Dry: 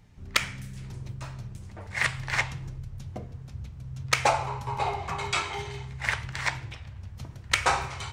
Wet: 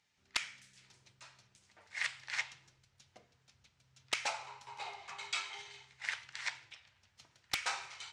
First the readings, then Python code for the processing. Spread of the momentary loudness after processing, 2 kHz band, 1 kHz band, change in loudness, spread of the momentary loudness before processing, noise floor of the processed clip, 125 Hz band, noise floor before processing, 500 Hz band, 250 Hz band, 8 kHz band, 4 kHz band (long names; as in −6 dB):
21 LU, −10.5 dB, −16.0 dB, −10.0 dB, 17 LU, −74 dBFS, −32.0 dB, −45 dBFS, −19.5 dB, −22.5 dB, −9.5 dB, −8.0 dB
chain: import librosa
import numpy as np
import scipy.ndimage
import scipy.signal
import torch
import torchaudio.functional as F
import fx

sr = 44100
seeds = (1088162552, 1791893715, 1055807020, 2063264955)

y = np.diff(x, prepend=0.0)
y = fx.notch(y, sr, hz=1100.0, q=18.0)
y = 10.0 ** (-14.0 / 20.0) * (np.abs((y / 10.0 ** (-14.0 / 20.0) + 3.0) % 4.0 - 2.0) - 1.0)
y = fx.air_absorb(y, sr, metres=110.0)
y = fx.doppler_dist(y, sr, depth_ms=0.95)
y = F.gain(torch.from_numpy(y), 2.0).numpy()